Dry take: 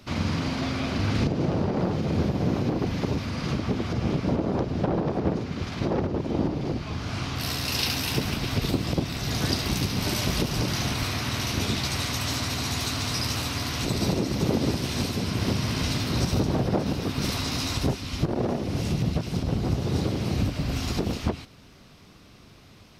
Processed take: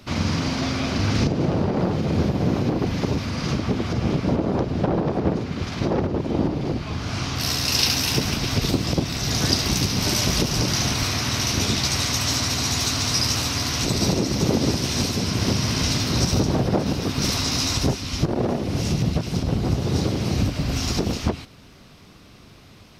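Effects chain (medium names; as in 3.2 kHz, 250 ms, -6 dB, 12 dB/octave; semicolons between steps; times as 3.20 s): dynamic bell 5.8 kHz, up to +7 dB, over -48 dBFS, Q 2; trim +3.5 dB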